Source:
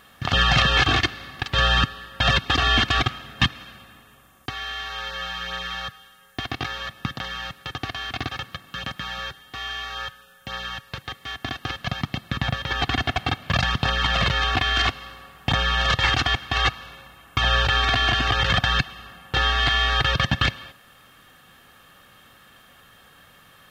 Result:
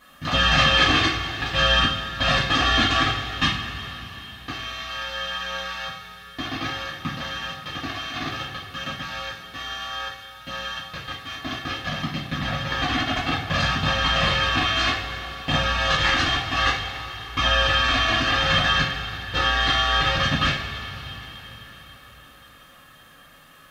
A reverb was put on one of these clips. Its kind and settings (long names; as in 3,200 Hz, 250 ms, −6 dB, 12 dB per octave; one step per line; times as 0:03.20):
coupled-rooms reverb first 0.43 s, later 4.5 s, from −18 dB, DRR −9 dB
level −8 dB